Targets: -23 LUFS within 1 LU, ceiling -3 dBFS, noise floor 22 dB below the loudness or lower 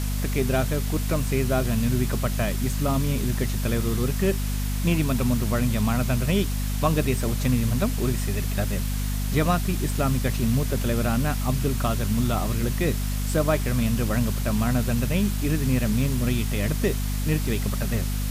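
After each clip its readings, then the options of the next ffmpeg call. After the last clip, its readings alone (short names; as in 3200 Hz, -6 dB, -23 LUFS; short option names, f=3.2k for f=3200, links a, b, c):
hum 50 Hz; harmonics up to 250 Hz; hum level -24 dBFS; noise floor -26 dBFS; noise floor target -47 dBFS; loudness -24.5 LUFS; peak -8.5 dBFS; loudness target -23.0 LUFS
-> -af "bandreject=f=50:t=h:w=6,bandreject=f=100:t=h:w=6,bandreject=f=150:t=h:w=6,bandreject=f=200:t=h:w=6,bandreject=f=250:t=h:w=6"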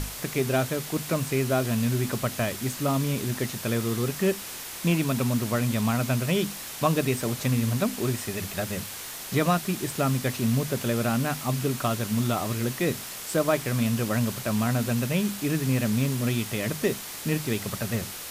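hum none; noise floor -38 dBFS; noise floor target -49 dBFS
-> -af "afftdn=nr=11:nf=-38"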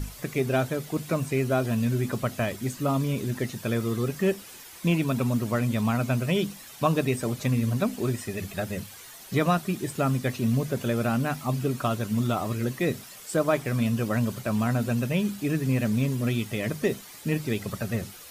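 noise floor -46 dBFS; noise floor target -50 dBFS
-> -af "afftdn=nr=6:nf=-46"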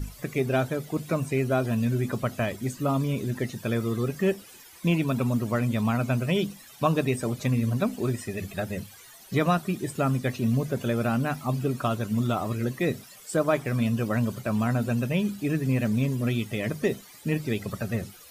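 noise floor -49 dBFS; noise floor target -50 dBFS
-> -af "afftdn=nr=6:nf=-49"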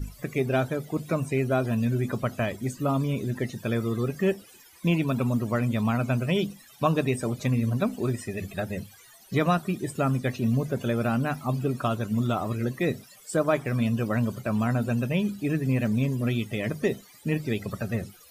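noise floor -53 dBFS; loudness -27.5 LUFS; peak -10.5 dBFS; loudness target -23.0 LUFS
-> -af "volume=4.5dB"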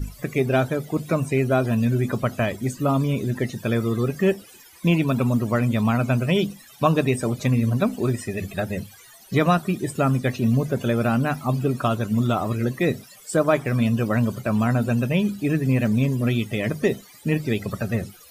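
loudness -23.0 LUFS; peak -6.0 dBFS; noise floor -48 dBFS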